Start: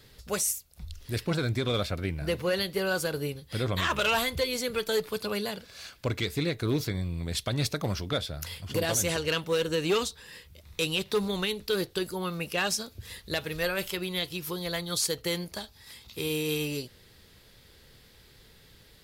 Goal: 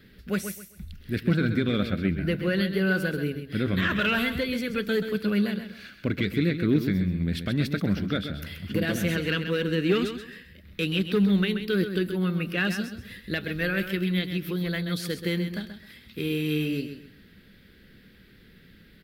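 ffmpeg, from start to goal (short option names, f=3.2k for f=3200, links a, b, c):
-filter_complex "[0:a]firequalizer=gain_entry='entry(130,0);entry(190,12);entry(460,-1);entry(940,-11);entry(1500,5);entry(6800,-16);entry(15000,-3)':delay=0.05:min_phase=1,asplit=2[a][b];[b]aecho=0:1:131|262|393:0.355|0.0958|0.0259[c];[a][c]amix=inputs=2:normalize=0"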